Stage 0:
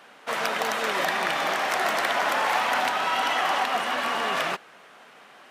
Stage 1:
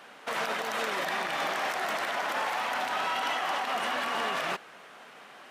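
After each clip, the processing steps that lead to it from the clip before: in parallel at -1 dB: negative-ratio compressor -30 dBFS, ratio -1; on the sum: limiter -13.5 dBFS, peak gain reduction 7 dB; gain -7.5 dB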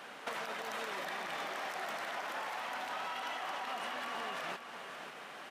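compressor 12:1, threshold -38 dBFS, peak gain reduction 12 dB; echo 0.543 s -9.5 dB; gain +1 dB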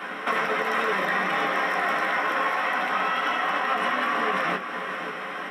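reverb RT60 0.15 s, pre-delay 3 ms, DRR -0.5 dB; gain +4.5 dB

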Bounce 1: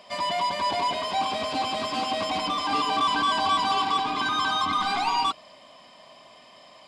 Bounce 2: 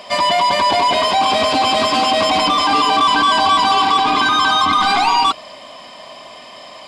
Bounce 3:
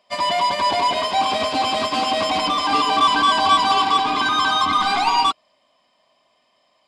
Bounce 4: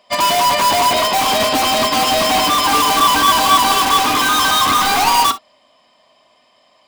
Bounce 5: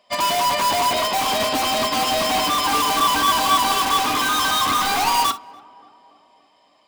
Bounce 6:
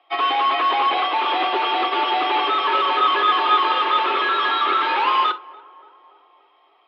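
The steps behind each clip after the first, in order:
bell 150 Hz -4 dB 1.1 oct; in parallel at -3 dB: negative-ratio compressor -29 dBFS; on the sum: gain +8 dB
upward expander 2.5:1, over -29 dBFS
in parallel at -3 dB: wrapped overs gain 17 dB; on the sum: non-linear reverb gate 80 ms flat, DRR 11.5 dB; gain +3.5 dB
tape echo 0.288 s, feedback 70%, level -21 dB, low-pass 1300 Hz; gain -5.5 dB
mistuned SSB +110 Hz 160–3300 Hz; gain +1 dB

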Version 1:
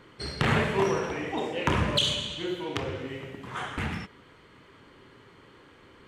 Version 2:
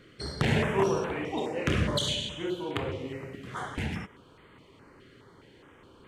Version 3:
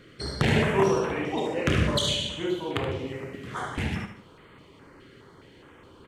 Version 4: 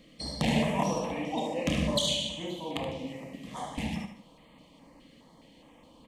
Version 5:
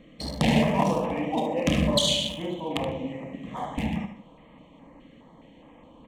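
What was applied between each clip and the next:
stepped notch 4.8 Hz 920–5600 Hz
feedback echo 75 ms, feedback 37%, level -9.5 dB; gain +3 dB
fixed phaser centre 390 Hz, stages 6
Wiener smoothing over 9 samples; gain +5.5 dB

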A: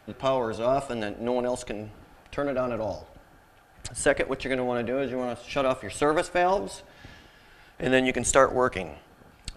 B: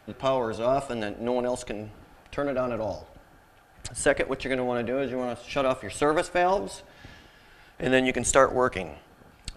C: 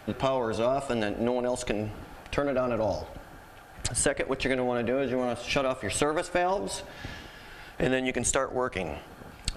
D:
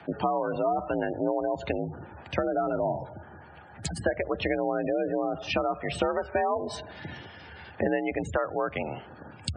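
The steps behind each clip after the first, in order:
nothing audible
compressor 16:1, threshold -30 dBFS, peak gain reduction 18.5 dB; gain +7.5 dB
frequency shift +53 Hz; treble ducked by the level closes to 2200 Hz, closed at -23 dBFS; spectral gate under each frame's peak -20 dB strong

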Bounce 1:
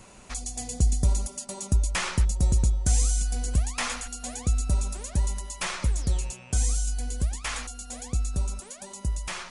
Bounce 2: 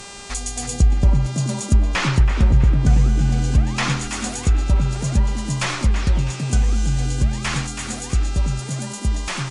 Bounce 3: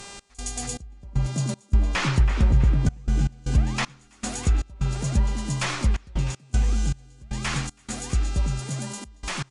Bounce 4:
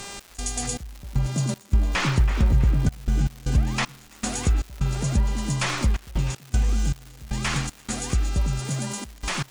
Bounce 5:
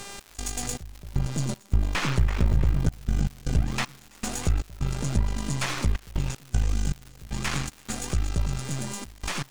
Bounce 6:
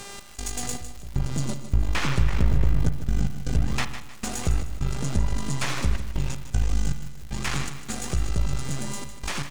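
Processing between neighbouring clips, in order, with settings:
frequency-shifting echo 0.326 s, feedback 40%, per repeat +80 Hz, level -8.5 dB; buzz 400 Hz, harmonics 22, -46 dBFS -1 dB/oct; treble ducked by the level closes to 2300 Hz, closed at -18 dBFS; gain +7.5 dB
step gate "x.xx..xx.xxxxxx." 78 bpm -24 dB; gain -4 dB
in parallel at +0.5 dB: compressor, threshold -28 dBFS, peak gain reduction 14 dB; on the sum: crackle 360/s -32 dBFS; gain -2.5 dB
half-wave gain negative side -12 dB
feedback echo 0.154 s, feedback 35%, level -11.5 dB; reverb RT60 0.75 s, pre-delay 35 ms, DRR 12 dB

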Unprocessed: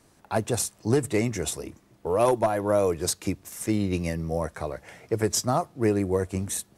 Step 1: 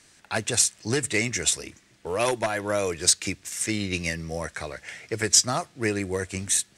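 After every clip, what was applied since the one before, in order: band shelf 3700 Hz +13.5 dB 2.9 oct; gain -4 dB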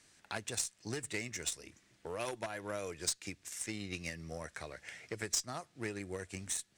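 compressor 2:1, threshold -36 dBFS, peak gain reduction 12.5 dB; added harmonics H 3 -18 dB, 4 -24 dB, 6 -34 dB, 7 -33 dB, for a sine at -16.5 dBFS; gain -2 dB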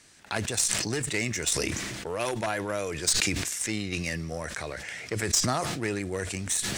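sustainer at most 26 dB/s; gain +8.5 dB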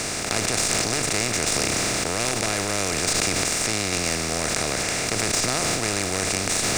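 per-bin compression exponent 0.2; gain -5 dB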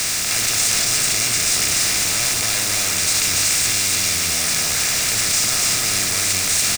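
zero-crossing step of -17 dBFS; passive tone stack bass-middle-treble 5-5-5; echo 0.289 s -3.5 dB; gain +6 dB

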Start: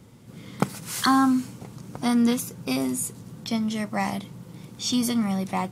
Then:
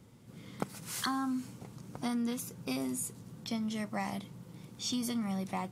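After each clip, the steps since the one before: compressor 6:1, threshold -23 dBFS, peak gain reduction 7.5 dB; gain -7.5 dB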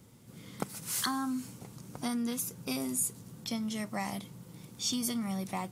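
high shelf 5900 Hz +9 dB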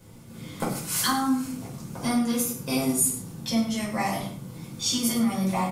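echo 99 ms -12.5 dB; reverb RT60 0.45 s, pre-delay 6 ms, DRR -6 dB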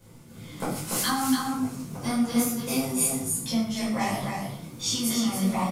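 echo 0.289 s -4.5 dB; detuned doubles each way 42 cents; gain +2 dB

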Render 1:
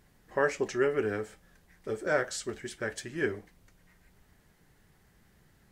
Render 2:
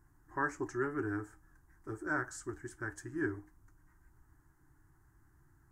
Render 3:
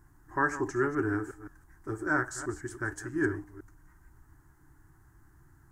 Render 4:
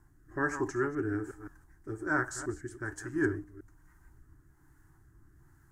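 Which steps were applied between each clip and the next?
EQ curve 130 Hz 0 dB, 210 Hz -17 dB, 310 Hz +4 dB, 510 Hz -23 dB, 940 Hz -1 dB, 1600 Hz -3 dB, 2300 Hz -21 dB, 3600 Hz -26 dB, 6700 Hz -8 dB
reverse delay 0.164 s, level -13 dB; gain +6.5 dB
rotary speaker horn 1.2 Hz

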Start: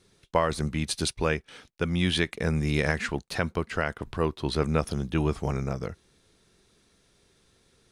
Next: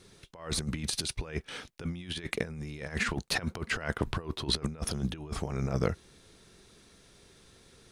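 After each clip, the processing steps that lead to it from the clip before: negative-ratio compressor -32 dBFS, ratio -0.5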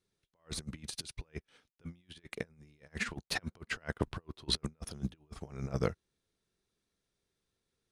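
upward expander 2.5:1, over -43 dBFS; gain +1 dB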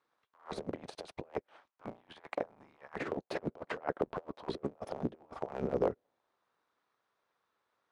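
cycle switcher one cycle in 3, inverted; limiter -26 dBFS, peak gain reduction 9.5 dB; auto-wah 410–1100 Hz, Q 2.1, down, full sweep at -35 dBFS; gain +14.5 dB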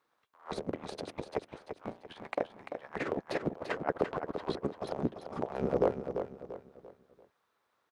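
feedback echo 0.342 s, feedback 37%, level -8 dB; gain +3 dB

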